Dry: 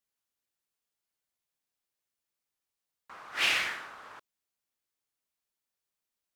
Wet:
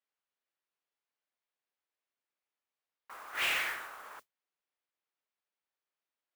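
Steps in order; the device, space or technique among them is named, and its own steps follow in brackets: carbon microphone (band-pass 360–3000 Hz; saturation -25 dBFS, distortion -15 dB; modulation noise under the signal 12 dB)

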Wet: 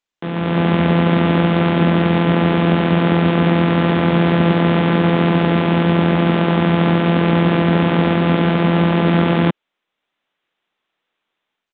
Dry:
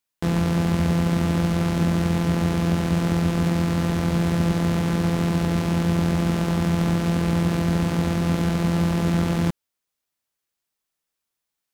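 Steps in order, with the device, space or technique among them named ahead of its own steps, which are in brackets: Bluetooth headset (high-pass 210 Hz 12 dB/octave; level rider gain up to 13 dB; resampled via 8 kHz; SBC 64 kbps 16 kHz)

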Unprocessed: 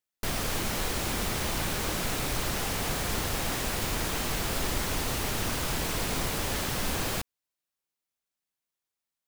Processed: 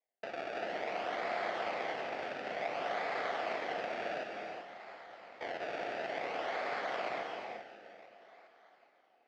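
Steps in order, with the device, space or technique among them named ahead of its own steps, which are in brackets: 4.23–5.41 s: amplifier tone stack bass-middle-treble 6-0-2; two-band feedback delay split 2.3 kHz, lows 174 ms, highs 420 ms, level -10 dB; circuit-bent sampling toy (decimation with a swept rate 29×, swing 100% 0.56 Hz; cabinet simulation 570–4300 Hz, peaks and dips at 680 Hz +9 dB, 980 Hz -6 dB, 2.1 kHz +6 dB, 3.8 kHz -6 dB); gated-style reverb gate 410 ms rising, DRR 3 dB; trim -5.5 dB

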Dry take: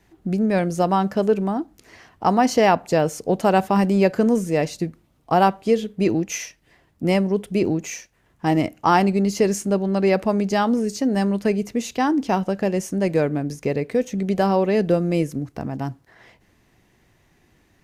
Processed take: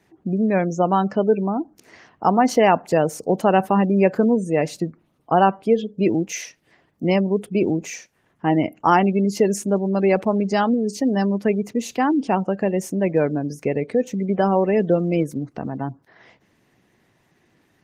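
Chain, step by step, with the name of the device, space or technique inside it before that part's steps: noise-suppressed video call (high-pass 130 Hz 12 dB/octave; spectral gate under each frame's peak -30 dB strong; trim +1 dB; Opus 24 kbps 48 kHz)

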